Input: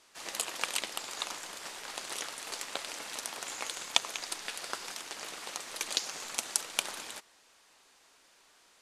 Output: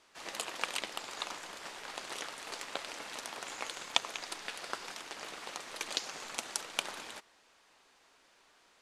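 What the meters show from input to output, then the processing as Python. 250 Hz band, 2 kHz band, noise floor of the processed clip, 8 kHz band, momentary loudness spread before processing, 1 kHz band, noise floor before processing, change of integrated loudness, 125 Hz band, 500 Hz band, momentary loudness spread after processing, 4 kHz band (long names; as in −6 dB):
0.0 dB, −1.5 dB, −66 dBFS, −6.5 dB, 9 LU, −0.5 dB, −64 dBFS, −3.5 dB, 0.0 dB, 0.0 dB, 9 LU, −3.0 dB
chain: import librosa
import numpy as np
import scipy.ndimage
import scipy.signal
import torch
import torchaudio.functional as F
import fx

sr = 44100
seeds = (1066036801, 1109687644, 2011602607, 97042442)

y = fx.high_shelf(x, sr, hz=5600.0, db=-10.5)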